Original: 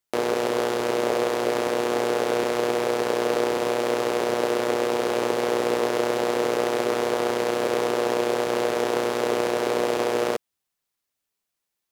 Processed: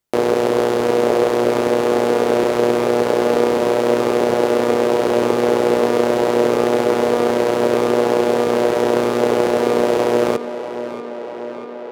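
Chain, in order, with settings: tilt shelf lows +4 dB, about 790 Hz; tape echo 0.64 s, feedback 82%, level -11.5 dB, low-pass 4700 Hz; gain +6 dB

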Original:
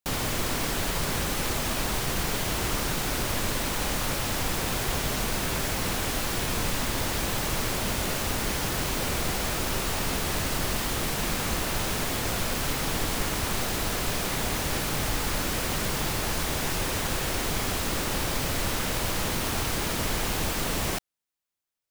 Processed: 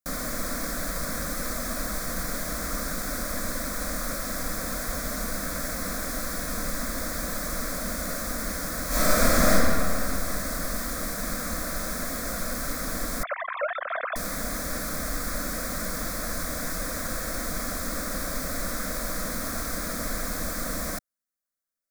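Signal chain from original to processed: 13.23–14.16 sine-wave speech; fixed phaser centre 580 Hz, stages 8; 8.87–9.51 reverb throw, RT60 2.6 s, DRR -11.5 dB

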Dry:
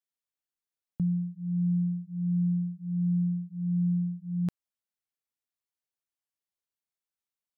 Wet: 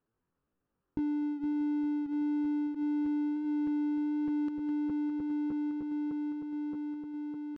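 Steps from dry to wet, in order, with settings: regenerating reverse delay 0.306 s, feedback 82%, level -13.5 dB; low-pass opened by the level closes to 440 Hz, open at -22.5 dBFS; comb 1.2 ms, depth 56%; compressor 6:1, threshold -33 dBFS, peak gain reduction 13 dB; pitch shift +9 st; power-law curve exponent 0.7; air absorption 110 m

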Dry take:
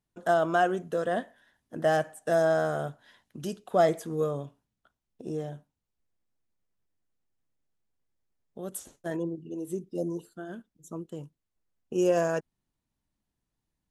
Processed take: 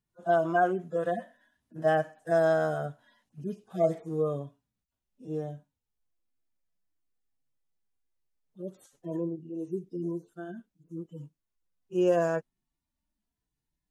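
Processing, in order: median-filter separation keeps harmonic

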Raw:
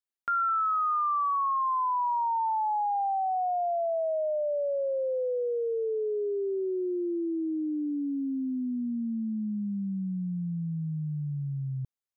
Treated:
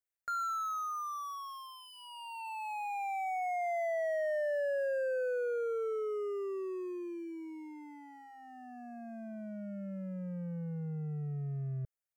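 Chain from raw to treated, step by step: overloaded stage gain 31.5 dB; fixed phaser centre 1000 Hz, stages 6

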